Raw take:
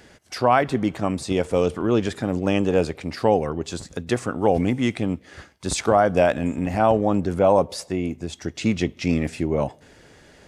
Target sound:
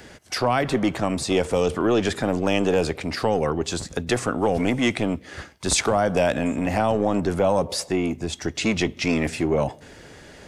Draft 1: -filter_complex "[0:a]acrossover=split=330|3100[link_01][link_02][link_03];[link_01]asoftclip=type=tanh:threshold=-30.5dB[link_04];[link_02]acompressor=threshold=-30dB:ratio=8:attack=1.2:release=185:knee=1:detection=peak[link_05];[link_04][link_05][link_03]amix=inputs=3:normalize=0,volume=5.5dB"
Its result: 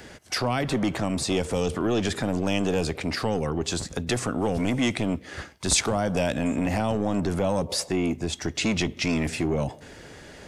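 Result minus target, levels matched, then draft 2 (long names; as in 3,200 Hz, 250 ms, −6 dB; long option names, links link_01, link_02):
downward compressor: peak gain reduction +7.5 dB
-filter_complex "[0:a]acrossover=split=330|3100[link_01][link_02][link_03];[link_01]asoftclip=type=tanh:threshold=-30.5dB[link_04];[link_02]acompressor=threshold=-21.5dB:ratio=8:attack=1.2:release=185:knee=1:detection=peak[link_05];[link_04][link_05][link_03]amix=inputs=3:normalize=0,volume=5.5dB"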